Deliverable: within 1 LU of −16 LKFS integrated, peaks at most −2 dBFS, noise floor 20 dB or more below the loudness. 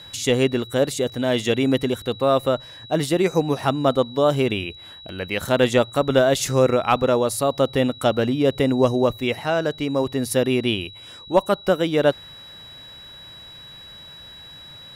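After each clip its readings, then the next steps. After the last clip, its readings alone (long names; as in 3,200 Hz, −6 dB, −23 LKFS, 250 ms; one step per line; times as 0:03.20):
interfering tone 3,900 Hz; level of the tone −40 dBFS; integrated loudness −21.0 LKFS; sample peak −5.0 dBFS; target loudness −16.0 LKFS
→ notch filter 3,900 Hz, Q 30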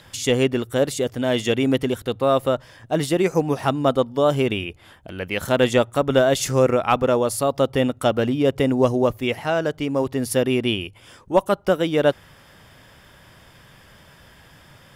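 interfering tone none found; integrated loudness −21.0 LKFS; sample peak −5.0 dBFS; target loudness −16.0 LKFS
→ level +5 dB
brickwall limiter −2 dBFS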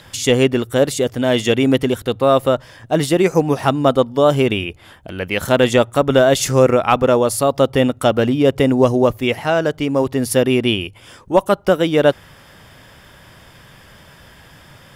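integrated loudness −16.0 LKFS; sample peak −2.0 dBFS; background noise floor −45 dBFS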